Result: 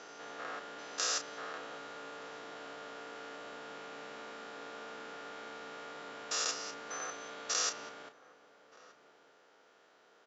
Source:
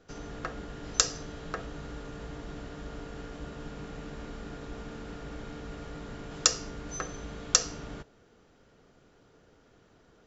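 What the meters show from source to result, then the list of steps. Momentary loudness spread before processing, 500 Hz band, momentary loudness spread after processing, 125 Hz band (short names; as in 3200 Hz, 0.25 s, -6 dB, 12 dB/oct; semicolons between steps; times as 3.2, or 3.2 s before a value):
16 LU, -4.0 dB, 14 LU, -24.0 dB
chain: stepped spectrum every 0.2 s; HPF 620 Hz 12 dB/oct; air absorption 54 m; doubler 32 ms -9.5 dB; outdoor echo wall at 210 m, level -17 dB; gain +3.5 dB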